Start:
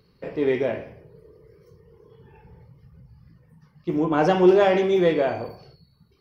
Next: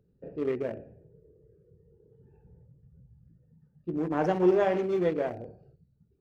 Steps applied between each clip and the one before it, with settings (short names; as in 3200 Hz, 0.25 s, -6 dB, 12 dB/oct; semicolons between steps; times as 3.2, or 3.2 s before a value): Wiener smoothing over 41 samples; dynamic EQ 3700 Hz, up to -7 dB, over -51 dBFS, Q 1.8; gain -6.5 dB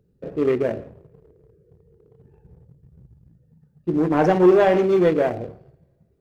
two-slope reverb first 0.51 s, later 2.4 s, from -18 dB, DRR 19.5 dB; sample leveller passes 1; gain +6.5 dB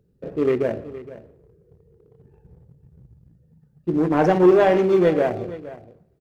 echo 0.467 s -16.5 dB